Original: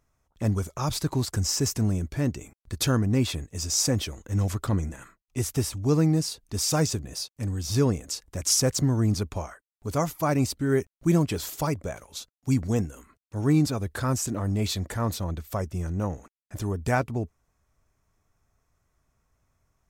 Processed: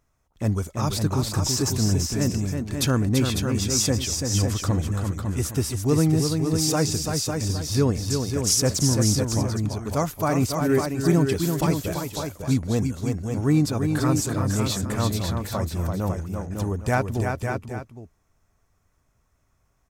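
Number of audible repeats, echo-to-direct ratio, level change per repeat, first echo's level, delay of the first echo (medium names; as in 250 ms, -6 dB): 3, -2.5 dB, no regular repeats, -5.5 dB, 337 ms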